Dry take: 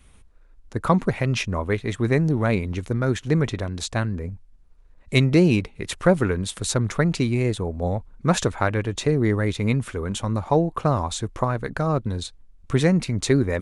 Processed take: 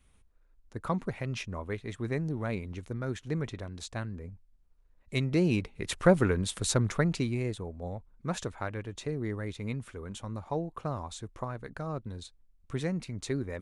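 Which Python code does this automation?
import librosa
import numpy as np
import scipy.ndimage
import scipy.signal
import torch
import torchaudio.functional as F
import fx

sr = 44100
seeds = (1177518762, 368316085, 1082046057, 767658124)

y = fx.gain(x, sr, db=fx.line((5.18, -12.0), (5.92, -4.0), (6.76, -4.0), (7.83, -13.5)))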